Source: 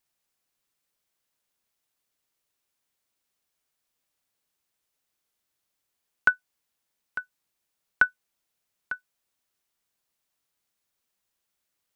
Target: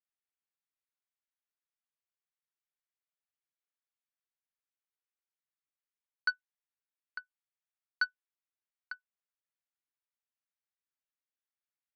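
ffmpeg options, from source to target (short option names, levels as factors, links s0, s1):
-af "bandpass=f=1700:t=q:w=1.1:csg=0,areverse,acompressor=threshold=0.0631:ratio=6,areverse,aeval=exprs='0.133*(cos(1*acos(clip(val(0)/0.133,-1,1)))-cos(1*PI/2))+0.00299*(cos(2*acos(clip(val(0)/0.133,-1,1)))-cos(2*PI/2))+0.0335*(cos(3*acos(clip(val(0)/0.133,-1,1)))-cos(3*PI/2))+0.0015*(cos(4*acos(clip(val(0)/0.133,-1,1)))-cos(4*PI/2))':c=same,volume=0.794"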